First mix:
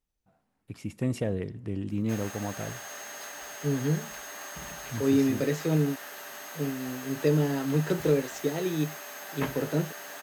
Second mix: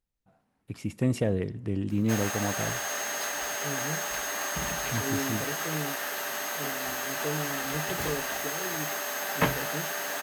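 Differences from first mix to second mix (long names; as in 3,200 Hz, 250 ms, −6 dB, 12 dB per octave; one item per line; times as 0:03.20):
first voice +3.0 dB
second voice −10.0 dB
background +9.0 dB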